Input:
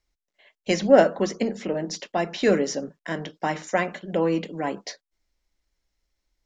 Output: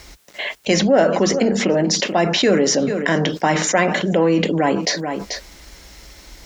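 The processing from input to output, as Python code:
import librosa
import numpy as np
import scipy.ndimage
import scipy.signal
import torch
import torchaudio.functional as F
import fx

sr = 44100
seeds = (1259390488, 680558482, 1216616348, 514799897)

y = scipy.signal.sosfilt(scipy.signal.butter(2, 47.0, 'highpass', fs=sr, output='sos'), x)
y = y + 10.0 ** (-24.0 / 20.0) * np.pad(y, (int(436 * sr / 1000.0), 0))[:len(y)]
y = fx.env_flatten(y, sr, amount_pct=70)
y = y * librosa.db_to_amplitude(-1.5)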